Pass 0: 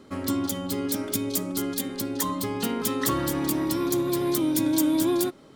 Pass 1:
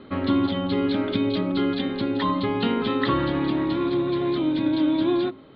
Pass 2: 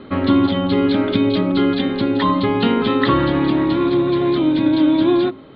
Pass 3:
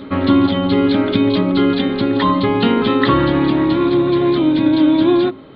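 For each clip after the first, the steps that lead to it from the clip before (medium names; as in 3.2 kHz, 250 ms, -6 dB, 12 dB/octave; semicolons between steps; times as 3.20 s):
steep low-pass 4.1 kHz 72 dB/octave; de-hum 53.63 Hz, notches 22; gain riding 2 s; trim +3.5 dB
distance through air 52 m; trim +7 dB
reverse echo 925 ms -21 dB; trim +2 dB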